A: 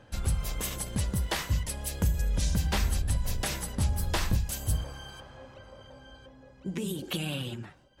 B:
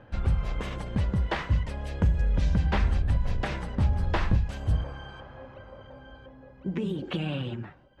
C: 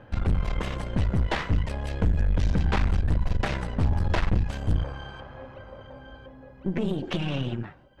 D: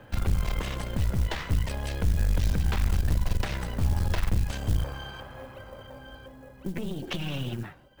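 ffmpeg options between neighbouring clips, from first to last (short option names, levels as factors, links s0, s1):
-af "lowpass=2200,volume=1.5"
-af "aeval=exprs='(tanh(20*val(0)+0.75)-tanh(0.75))/20':c=same,volume=2.24"
-filter_complex "[0:a]acrossover=split=130[s0][s1];[s1]acompressor=threshold=0.0282:ratio=10[s2];[s0][s2]amix=inputs=2:normalize=0,acrusher=bits=8:mode=log:mix=0:aa=0.000001,highshelf=f=2900:g=9,volume=0.891"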